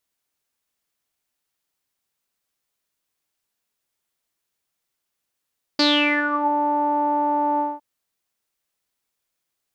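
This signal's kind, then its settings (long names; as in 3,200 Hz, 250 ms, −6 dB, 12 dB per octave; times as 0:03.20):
subtractive voice saw D4 12 dB per octave, low-pass 840 Hz, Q 11, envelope 2.5 octaves, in 0.69 s, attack 4.9 ms, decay 0.47 s, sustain −9 dB, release 0.21 s, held 1.80 s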